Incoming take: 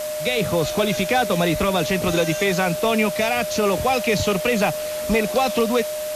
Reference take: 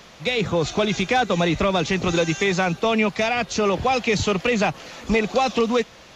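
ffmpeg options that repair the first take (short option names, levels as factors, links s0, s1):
-af "bandreject=f=610:w=30,afwtdn=0.02"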